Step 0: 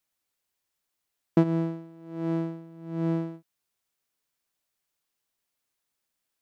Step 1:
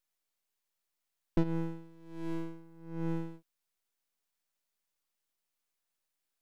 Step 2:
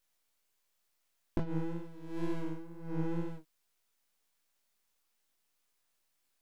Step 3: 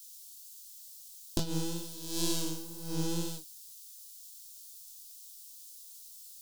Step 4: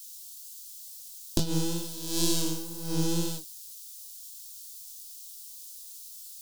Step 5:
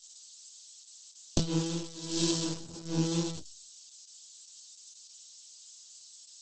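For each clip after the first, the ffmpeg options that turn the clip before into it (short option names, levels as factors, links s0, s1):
-af "highpass=f=220:p=1,aeval=exprs='max(val(0),0)':c=same"
-af "acompressor=threshold=0.0158:ratio=5,flanger=delay=19.5:depth=7.4:speed=2.1,volume=2.99"
-af "aexciter=amount=14:drive=8.1:freq=3300,volume=1.12"
-filter_complex "[0:a]acrossover=split=480|3000[s0][s1][s2];[s1]acompressor=threshold=0.00631:ratio=6[s3];[s0][s3][s2]amix=inputs=3:normalize=0,volume=1.88"
-ar 48000 -c:a libopus -b:a 10k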